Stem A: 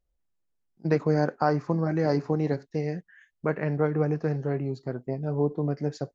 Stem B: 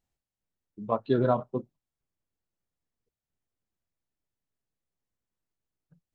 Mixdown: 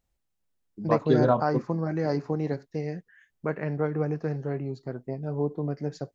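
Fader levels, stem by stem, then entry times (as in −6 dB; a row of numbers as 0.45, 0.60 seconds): −2.5, +2.5 decibels; 0.00, 0.00 seconds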